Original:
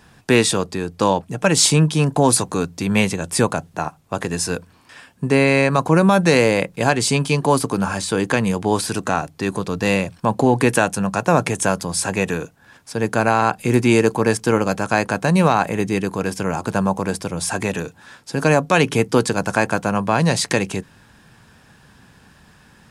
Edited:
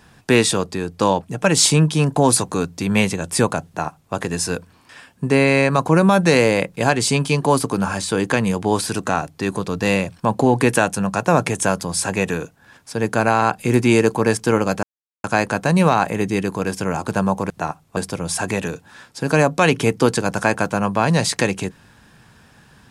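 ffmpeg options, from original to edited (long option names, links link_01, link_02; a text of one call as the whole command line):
ffmpeg -i in.wav -filter_complex "[0:a]asplit=4[link_01][link_02][link_03][link_04];[link_01]atrim=end=14.83,asetpts=PTS-STARTPTS,afade=type=out:start_time=14.826:duration=0.004:curve=hsin,apad=pad_dur=0.41[link_05];[link_02]atrim=start=14.83:end=17.092,asetpts=PTS-STARTPTS,afade=type=in:duration=0.004:curve=hsin[link_06];[link_03]atrim=start=3.668:end=4.142[link_07];[link_04]atrim=start=17.088[link_08];[link_05][link_06]concat=n=2:v=0:a=1[link_09];[link_09][link_07]acrossfade=duration=0.004:curve1=hsin:curve2=hsin[link_10];[link_10][link_08]acrossfade=duration=0.004:curve1=hsin:curve2=hsin" out.wav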